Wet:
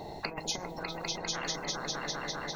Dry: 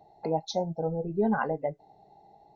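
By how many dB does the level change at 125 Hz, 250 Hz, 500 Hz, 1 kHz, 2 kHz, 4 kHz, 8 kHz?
−8.5 dB, −11.0 dB, −10.5 dB, −5.0 dB, +2.5 dB, +10.5 dB, can't be measured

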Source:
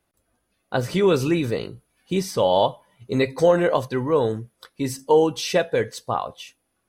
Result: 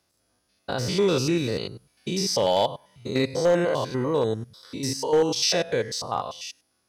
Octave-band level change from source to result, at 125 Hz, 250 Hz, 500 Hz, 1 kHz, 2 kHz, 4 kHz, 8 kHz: −2.5, −3.0, −3.5, −4.0, −3.0, +4.0, +5.0 decibels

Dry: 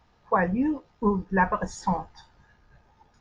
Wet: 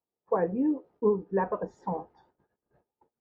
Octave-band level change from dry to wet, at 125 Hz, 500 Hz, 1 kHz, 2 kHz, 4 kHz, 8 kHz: −8.0 dB, +2.0 dB, −8.0 dB, −14.5 dB, below −20 dB, below −25 dB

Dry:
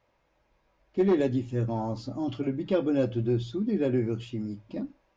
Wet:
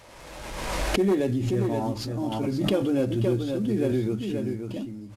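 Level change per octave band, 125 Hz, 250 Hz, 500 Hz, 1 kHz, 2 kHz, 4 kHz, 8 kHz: +3.0 dB, +2.5 dB, +2.0 dB, +5.0 dB, +8.0 dB, +10.5 dB, can't be measured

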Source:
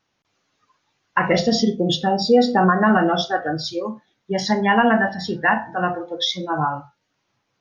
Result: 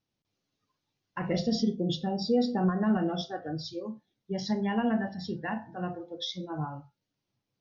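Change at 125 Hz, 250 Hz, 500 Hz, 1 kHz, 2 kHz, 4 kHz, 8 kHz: −7.0 dB, −8.0 dB, −12.5 dB, −17.0 dB, −19.5 dB, −13.0 dB, can't be measured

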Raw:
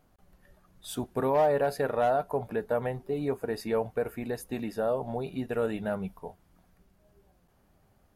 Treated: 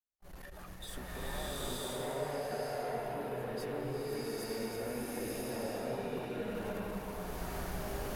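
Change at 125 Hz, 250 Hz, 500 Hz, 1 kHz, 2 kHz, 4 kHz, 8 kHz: −5.0, −6.0, −9.0, −9.0, −4.0, +3.0, +3.0 decibels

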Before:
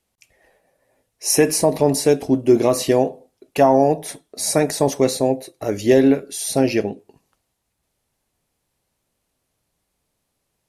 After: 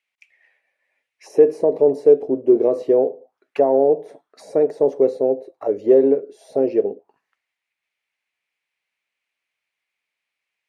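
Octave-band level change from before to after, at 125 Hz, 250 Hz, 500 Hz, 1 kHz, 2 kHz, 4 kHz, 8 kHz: −15.0 dB, −4.5 dB, +2.0 dB, −7.0 dB, below −15 dB, below −20 dB, below −25 dB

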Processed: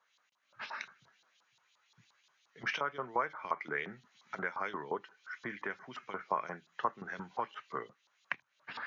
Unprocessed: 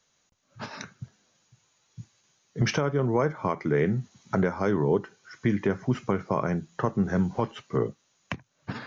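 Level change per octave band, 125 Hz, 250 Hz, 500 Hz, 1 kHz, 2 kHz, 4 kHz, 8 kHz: −27.0 dB, −22.0 dB, −15.0 dB, −4.0 dB, −2.5 dB, −7.0 dB, can't be measured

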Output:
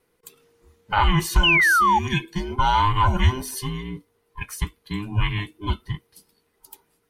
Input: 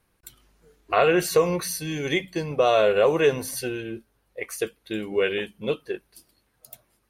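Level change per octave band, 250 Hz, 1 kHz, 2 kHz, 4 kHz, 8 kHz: +0.5, +8.0, +8.0, +6.5, 0.0 decibels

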